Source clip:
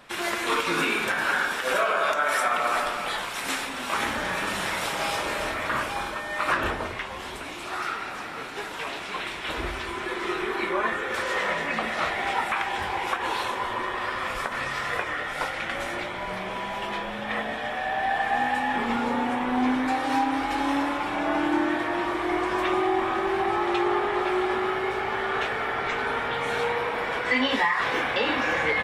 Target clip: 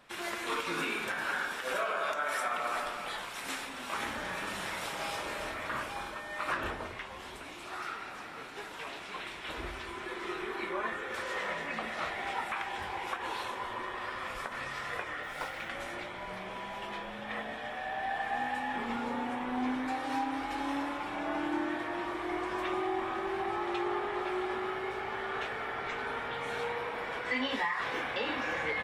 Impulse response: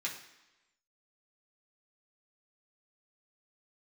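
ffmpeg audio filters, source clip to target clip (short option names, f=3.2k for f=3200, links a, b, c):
-filter_complex "[0:a]asettb=1/sr,asplit=3[a][b][c];[a]atrim=end=15.234[d];[b]atrim=start=15.23:end=15.69,asetpts=PTS-STARTPTS,afade=t=in:d=0.004:c=qsin,afade=t=out:st=0.456:d=0.004:c=qsin,acrusher=bits=6:mode=log:mix=0:aa=0.000001[e];[c]atrim=start=15.686[f];[d][e]acrossfade=d=0.004:c1=hsin:c2=qsin[g];[g][f]acrossfade=d=0.004:c1=qsin:c2=hsin,volume=-9dB"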